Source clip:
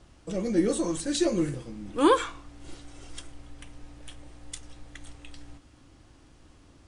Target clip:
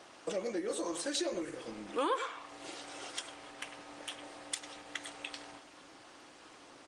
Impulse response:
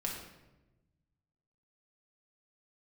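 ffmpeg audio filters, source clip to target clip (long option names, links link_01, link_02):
-filter_complex "[0:a]asplit=3[link_01][link_02][link_03];[link_01]afade=type=out:start_time=2.26:duration=0.02[link_04];[link_02]bandreject=frequency=1500:width=8.8,afade=type=in:start_time=2.26:duration=0.02,afade=type=out:start_time=2.75:duration=0.02[link_05];[link_03]afade=type=in:start_time=2.75:duration=0.02[link_06];[link_04][link_05][link_06]amix=inputs=3:normalize=0,asplit=2[link_07][link_08];[link_08]adelay=100,highpass=300,lowpass=3400,asoftclip=type=hard:threshold=-18dB,volume=-11dB[link_09];[link_07][link_09]amix=inputs=2:normalize=0,acompressor=threshold=-37dB:ratio=6,highpass=520,lowpass=7600,volume=10dB" -ar 48000 -c:a libopus -b:a 24k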